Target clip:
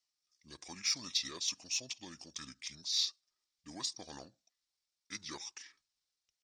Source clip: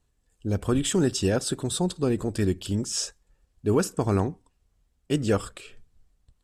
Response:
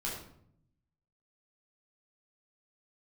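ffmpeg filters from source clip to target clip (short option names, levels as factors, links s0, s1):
-af "bandpass=f=4800:t=q:w=0.71:csg=0,asetrate=31183,aresample=44100,atempo=1.41421,aexciter=amount=2.2:drive=7.8:freq=4000,volume=0.398"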